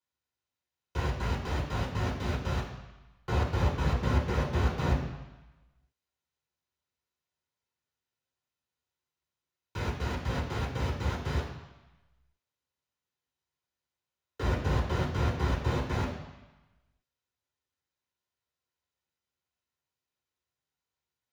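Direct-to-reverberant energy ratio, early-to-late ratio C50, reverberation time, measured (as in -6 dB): -4.5 dB, 5.5 dB, 1.1 s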